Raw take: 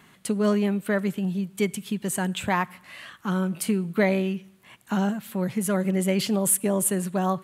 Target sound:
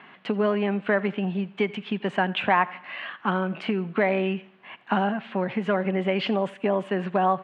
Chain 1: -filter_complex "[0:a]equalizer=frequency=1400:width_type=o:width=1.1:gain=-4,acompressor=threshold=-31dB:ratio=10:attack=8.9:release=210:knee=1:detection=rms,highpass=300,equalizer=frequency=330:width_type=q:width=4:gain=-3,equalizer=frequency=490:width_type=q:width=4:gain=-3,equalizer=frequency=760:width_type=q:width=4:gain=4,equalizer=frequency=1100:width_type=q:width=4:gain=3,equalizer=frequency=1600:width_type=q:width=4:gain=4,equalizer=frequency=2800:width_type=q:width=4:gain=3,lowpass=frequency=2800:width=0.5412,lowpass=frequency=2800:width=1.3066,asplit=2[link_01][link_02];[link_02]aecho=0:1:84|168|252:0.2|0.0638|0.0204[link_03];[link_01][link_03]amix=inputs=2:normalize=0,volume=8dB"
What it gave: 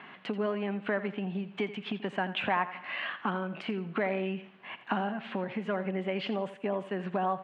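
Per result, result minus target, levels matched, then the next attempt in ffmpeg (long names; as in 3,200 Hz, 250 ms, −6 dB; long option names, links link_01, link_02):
downward compressor: peak gain reduction +8 dB; echo-to-direct +8 dB
-filter_complex "[0:a]equalizer=frequency=1400:width_type=o:width=1.1:gain=-4,acompressor=threshold=-22dB:ratio=10:attack=8.9:release=210:knee=1:detection=rms,highpass=300,equalizer=frequency=330:width_type=q:width=4:gain=-3,equalizer=frequency=490:width_type=q:width=4:gain=-3,equalizer=frequency=760:width_type=q:width=4:gain=4,equalizer=frequency=1100:width_type=q:width=4:gain=3,equalizer=frequency=1600:width_type=q:width=4:gain=4,equalizer=frequency=2800:width_type=q:width=4:gain=3,lowpass=frequency=2800:width=0.5412,lowpass=frequency=2800:width=1.3066,asplit=2[link_01][link_02];[link_02]aecho=0:1:84|168|252:0.2|0.0638|0.0204[link_03];[link_01][link_03]amix=inputs=2:normalize=0,volume=8dB"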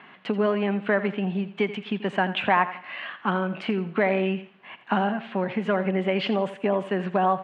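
echo-to-direct +8 dB
-filter_complex "[0:a]equalizer=frequency=1400:width_type=o:width=1.1:gain=-4,acompressor=threshold=-22dB:ratio=10:attack=8.9:release=210:knee=1:detection=rms,highpass=300,equalizer=frequency=330:width_type=q:width=4:gain=-3,equalizer=frequency=490:width_type=q:width=4:gain=-3,equalizer=frequency=760:width_type=q:width=4:gain=4,equalizer=frequency=1100:width_type=q:width=4:gain=3,equalizer=frequency=1600:width_type=q:width=4:gain=4,equalizer=frequency=2800:width_type=q:width=4:gain=3,lowpass=frequency=2800:width=0.5412,lowpass=frequency=2800:width=1.3066,asplit=2[link_01][link_02];[link_02]aecho=0:1:84|168:0.0794|0.0254[link_03];[link_01][link_03]amix=inputs=2:normalize=0,volume=8dB"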